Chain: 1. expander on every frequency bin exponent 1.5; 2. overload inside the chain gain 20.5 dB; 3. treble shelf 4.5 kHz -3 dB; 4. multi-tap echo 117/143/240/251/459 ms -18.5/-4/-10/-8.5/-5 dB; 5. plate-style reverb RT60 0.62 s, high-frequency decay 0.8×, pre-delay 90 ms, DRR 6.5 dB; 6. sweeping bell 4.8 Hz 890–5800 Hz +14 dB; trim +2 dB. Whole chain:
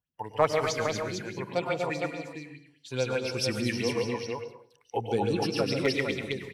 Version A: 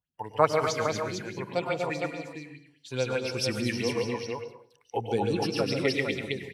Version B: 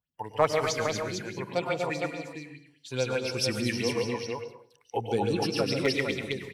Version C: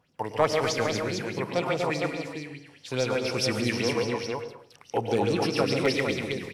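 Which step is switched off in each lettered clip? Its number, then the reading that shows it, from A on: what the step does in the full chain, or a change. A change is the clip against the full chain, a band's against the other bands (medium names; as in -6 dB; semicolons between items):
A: 2, crest factor change +3.5 dB; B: 3, 8 kHz band +2.0 dB; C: 1, loudness change +2.5 LU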